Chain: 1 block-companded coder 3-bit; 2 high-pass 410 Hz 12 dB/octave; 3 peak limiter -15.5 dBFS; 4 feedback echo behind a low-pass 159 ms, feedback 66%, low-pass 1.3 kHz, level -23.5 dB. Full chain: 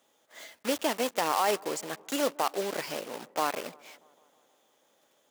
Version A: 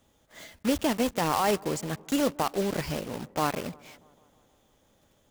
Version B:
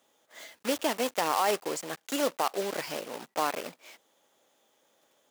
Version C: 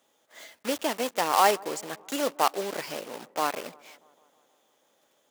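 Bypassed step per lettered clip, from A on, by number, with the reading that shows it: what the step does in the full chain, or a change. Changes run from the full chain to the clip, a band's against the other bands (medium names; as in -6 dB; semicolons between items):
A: 2, 125 Hz band +16.0 dB; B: 4, echo-to-direct -25.0 dB to none; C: 3, crest factor change +5.0 dB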